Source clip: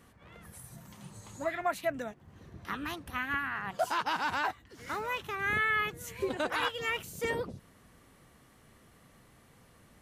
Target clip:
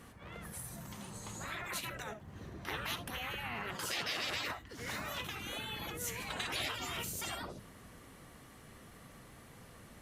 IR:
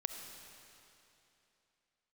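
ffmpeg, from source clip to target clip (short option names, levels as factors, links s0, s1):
-filter_complex "[1:a]atrim=start_sample=2205,atrim=end_sample=3528[s0];[0:a][s0]afir=irnorm=-1:irlink=0,afftfilt=real='re*lt(hypot(re,im),0.0316)':imag='im*lt(hypot(re,im),0.0316)':win_size=1024:overlap=0.75,volume=2" -ar 48000 -c:a libopus -b:a 64k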